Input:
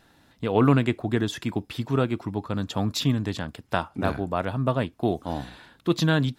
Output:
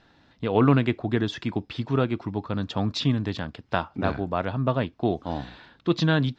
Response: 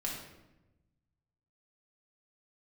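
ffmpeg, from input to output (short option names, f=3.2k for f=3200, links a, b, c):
-af "lowpass=f=5.3k:w=0.5412,lowpass=f=5.3k:w=1.3066"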